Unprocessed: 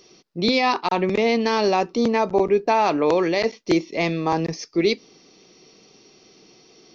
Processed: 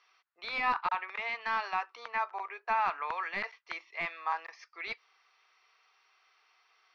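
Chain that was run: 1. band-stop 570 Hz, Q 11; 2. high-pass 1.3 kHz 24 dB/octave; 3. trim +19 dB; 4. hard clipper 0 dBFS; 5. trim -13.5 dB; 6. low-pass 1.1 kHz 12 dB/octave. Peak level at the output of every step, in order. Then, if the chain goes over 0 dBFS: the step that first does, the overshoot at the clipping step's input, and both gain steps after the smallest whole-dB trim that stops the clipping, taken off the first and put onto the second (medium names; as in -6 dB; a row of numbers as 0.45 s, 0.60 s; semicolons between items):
-8.0 dBFS, -11.5 dBFS, +7.5 dBFS, 0.0 dBFS, -13.5 dBFS, -18.5 dBFS; step 3, 7.5 dB; step 3 +11 dB, step 5 -5.5 dB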